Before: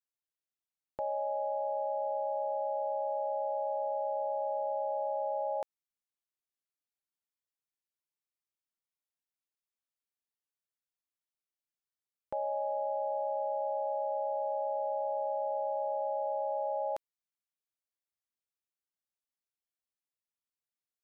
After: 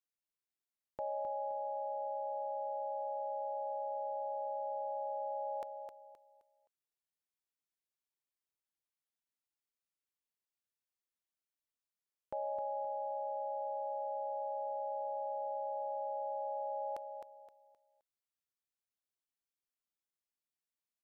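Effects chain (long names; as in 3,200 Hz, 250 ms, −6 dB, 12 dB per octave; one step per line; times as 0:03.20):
repeating echo 261 ms, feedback 31%, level −7 dB
level −4.5 dB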